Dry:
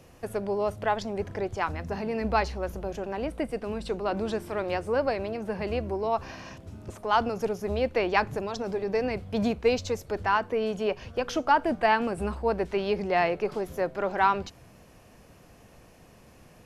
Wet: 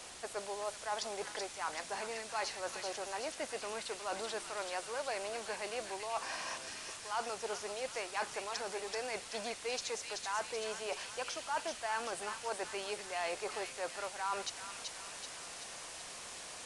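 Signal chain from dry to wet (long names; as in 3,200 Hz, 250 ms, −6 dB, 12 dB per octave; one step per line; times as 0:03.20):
high-pass filter 970 Hz 12 dB per octave
parametric band 2,400 Hz −6.5 dB 2.1 octaves
reversed playback
downward compressor 4 to 1, threshold −51 dBFS, peak gain reduction 23 dB
reversed playback
bit-depth reduction 10 bits, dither triangular
on a send: delay with a high-pass on its return 381 ms, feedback 57%, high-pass 1,900 Hz, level −3.5 dB
on the sum: downsampling to 22,050 Hz
level +12 dB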